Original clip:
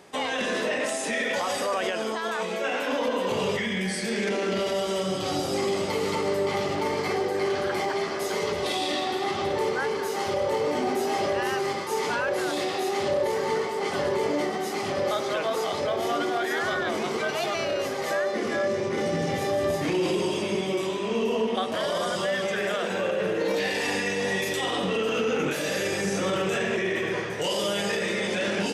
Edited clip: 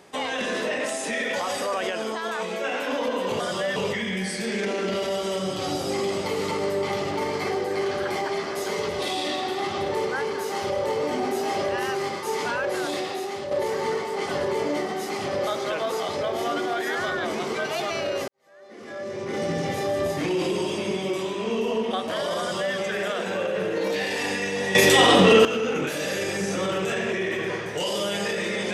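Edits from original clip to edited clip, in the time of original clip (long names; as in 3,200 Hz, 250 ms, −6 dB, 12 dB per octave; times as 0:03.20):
0:12.56–0:13.15: fade out, to −8 dB
0:17.92–0:19.09: fade in quadratic
0:22.04–0:22.40: duplicate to 0:03.40
0:24.39–0:25.09: clip gain +12 dB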